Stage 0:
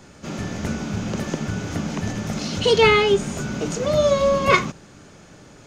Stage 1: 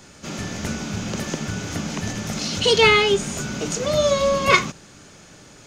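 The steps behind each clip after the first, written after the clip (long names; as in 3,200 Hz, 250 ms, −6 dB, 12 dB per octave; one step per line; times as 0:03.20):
high-shelf EQ 2,000 Hz +8 dB
level −2 dB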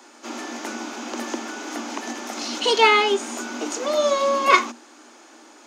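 Chebyshev high-pass with heavy ripple 230 Hz, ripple 9 dB
level +5.5 dB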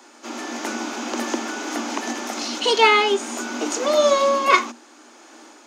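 automatic gain control gain up to 4 dB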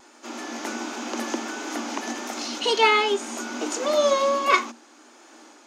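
pitch vibrato 1.4 Hz 25 cents
level −3.5 dB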